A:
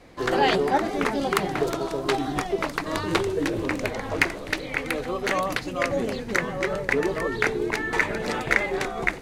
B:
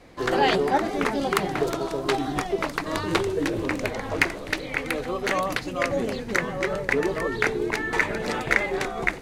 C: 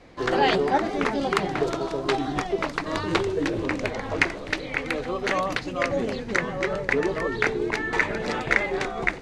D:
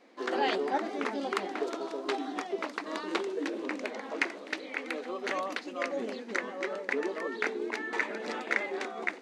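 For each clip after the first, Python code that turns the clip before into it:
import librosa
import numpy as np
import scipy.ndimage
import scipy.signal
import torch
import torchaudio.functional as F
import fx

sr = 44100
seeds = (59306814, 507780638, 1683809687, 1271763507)

y1 = x
y2 = scipy.signal.sosfilt(scipy.signal.butter(2, 6700.0, 'lowpass', fs=sr, output='sos'), y1)
y3 = fx.brickwall_highpass(y2, sr, low_hz=200.0)
y3 = y3 * librosa.db_to_amplitude(-8.0)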